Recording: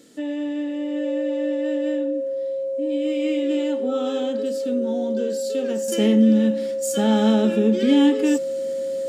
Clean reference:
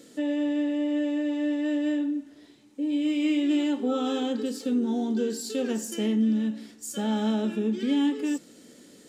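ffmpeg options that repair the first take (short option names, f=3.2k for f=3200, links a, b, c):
-af "bandreject=f=540:w=30,asetnsamples=n=441:p=0,asendcmd='5.88 volume volume -8dB',volume=0dB"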